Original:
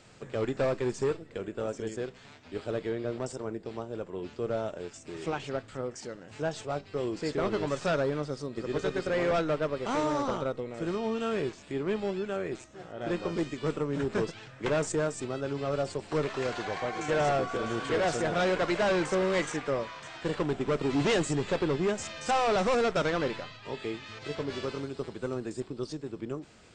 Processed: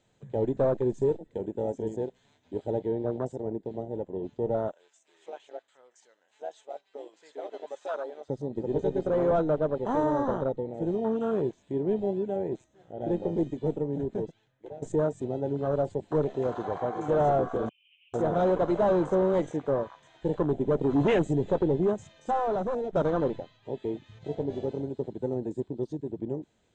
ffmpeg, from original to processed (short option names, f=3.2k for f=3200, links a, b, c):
-filter_complex "[0:a]asettb=1/sr,asplit=3[a][b][c];[a]atrim=end=0.974[d];[b]atrim=start=0.97:end=2.79,asetpts=PTS-STARTPTS,afade=t=in:d=0.004:c=qsin,afade=t=out:st=1.816:d=0.004:c=qsin,highshelf=f=7.9k:g=9[e];[c]atrim=start=2.786[f];[d][e]acrossfade=d=0.004:c1=hsin:c2=qsin[g];[g][f]acrossfade=d=0.004:c1=qsin:c2=hsin,asettb=1/sr,asplit=3[h][i][j];[h]atrim=end=4.724[k];[i]atrim=start=4.72:end=8.3,asetpts=PTS-STARTPTS,afade=t=in:d=0.004:c=qsin,afade=t=out:st=3.576:d=0.004:c=qsin,highpass=860[l];[j]atrim=start=8.296[m];[k][l]acrossfade=d=0.004:c1=hsin:c2=qsin[n];[n][m]acrossfade=d=0.004:c1=qsin:c2=hsin,asettb=1/sr,asplit=3[o][p][q];[o]atrim=end=17.694[r];[p]atrim=start=17.69:end=18.14,asetpts=PTS-STARTPTS,afade=t=in:d=0.004:c=qsin,afade=t=out:st=0.446:d=0.004:c=qsin,asuperpass=centerf=2700:order=8:qfactor=3.9[s];[q]atrim=start=18.136[t];[r][s]acrossfade=d=0.004:c1=hsin:c2=qsin[u];[u][t]acrossfade=d=0.004:c1=qsin:c2=hsin,asplit=3[v][w][x];[v]atrim=end=14.82,asetpts=PTS-STARTPTS,afade=t=out:st=13.5:d=1.32:silence=0.105925[y];[w]atrim=start=14.82:end=22.93,asetpts=PTS-STARTPTS,afade=t=in:d=0.004:c=hsin:silence=0.105925,afade=t=out:st=6.98:d=1.13:silence=0.334965[z];[x]atrim=start=22.93,asetpts=PTS-STARTPTS,afade=t=in:d=0.004:c=hsin:silence=0.334965[aa];[y][z][aa]concat=n=3:v=0:a=1,superequalizer=10b=0.447:11b=0.708:12b=0.562:14b=0.355,afwtdn=0.0224,lowpass=f=7.9k:w=0.5412,lowpass=f=7.9k:w=1.3066,volume=3.5dB"